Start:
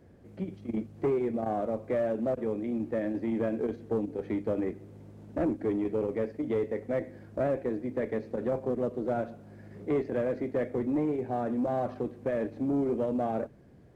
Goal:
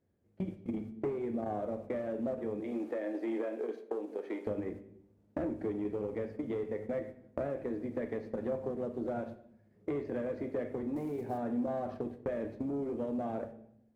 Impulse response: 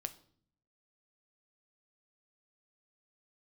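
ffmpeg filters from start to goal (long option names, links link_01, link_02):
-filter_complex "[0:a]agate=range=-26dB:threshold=-39dB:ratio=16:detection=peak,asettb=1/sr,asplit=3[link_01][link_02][link_03];[link_01]atrim=end=2.604[link_04];[link_02]atrim=start=2.6:end=4.47,asetpts=PTS-STARTPTS,afade=type=in:duration=0.004:curve=qsin,afade=type=out:start_time=1.866:duration=0.004:curve=qsin,highpass=frequency=330:width=0.5412,highpass=frequency=330:width=1.3066[link_05];[link_03]atrim=start=4.466[link_06];[link_04][link_05]acrossfade=duration=0.004:curve1=hsin:curve2=qsin[link_07];[link_07][link_06]acrossfade=duration=0.004:curve1=qsin:curve2=hsin,acompressor=threshold=-39dB:ratio=6,asettb=1/sr,asplit=3[link_08][link_09][link_10];[link_08]atrim=end=10.964[link_11];[link_09]atrim=start=10.96:end=11.38,asetpts=PTS-STARTPTS,afade=type=in:duration=0.004:curve=qsin,afade=type=out:start_time=0.416:duration=0.004:curve=qsin,acrusher=bits=8:mode=log:mix=0:aa=0.000001[link_12];[link_10]atrim=start=11.376[link_13];[link_11][link_12]acrossfade=duration=0.004:curve1=hsin:curve2=qsin[link_14];[link_14][link_13]acrossfade=duration=0.004:curve1=qsin:curve2=hsin[link_15];[1:a]atrim=start_sample=2205,asetrate=29547,aresample=44100[link_16];[link_15][link_16]afir=irnorm=-1:irlink=0,volume=5dB"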